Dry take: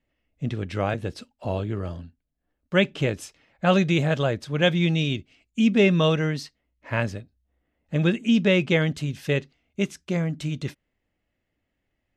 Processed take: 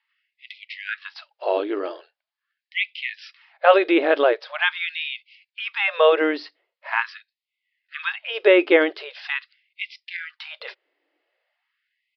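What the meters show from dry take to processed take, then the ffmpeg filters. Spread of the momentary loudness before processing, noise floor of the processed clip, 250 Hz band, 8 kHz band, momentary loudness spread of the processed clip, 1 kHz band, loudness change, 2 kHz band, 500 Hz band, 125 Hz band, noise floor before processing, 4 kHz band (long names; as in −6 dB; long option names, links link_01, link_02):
16 LU, below −85 dBFS, −5.0 dB, below −20 dB, 19 LU, +7.0 dB, +2.5 dB, +5.0 dB, +5.0 dB, below −40 dB, −79 dBFS, +1.0 dB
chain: -filter_complex "[0:a]aresample=11025,aresample=44100,acrossover=split=2600[link_01][link_02];[link_02]acompressor=threshold=-46dB:ratio=4:attack=1:release=60[link_03];[link_01][link_03]amix=inputs=2:normalize=0,afftfilt=real='re*gte(b*sr/1024,270*pow(2000/270,0.5+0.5*sin(2*PI*0.43*pts/sr)))':imag='im*gte(b*sr/1024,270*pow(2000/270,0.5+0.5*sin(2*PI*0.43*pts/sr)))':win_size=1024:overlap=0.75,volume=8dB"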